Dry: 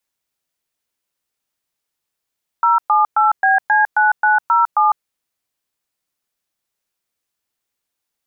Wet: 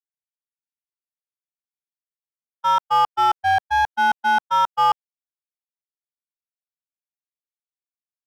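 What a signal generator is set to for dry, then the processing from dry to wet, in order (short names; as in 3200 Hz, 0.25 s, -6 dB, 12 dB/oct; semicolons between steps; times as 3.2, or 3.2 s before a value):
DTMF "078BC9907", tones 0.153 s, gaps 0.114 s, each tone -13 dBFS
LPF 1200 Hz 12 dB/oct; in parallel at -6 dB: wavefolder -18.5 dBFS; on the sum: gate -16 dBFS, range -51 dB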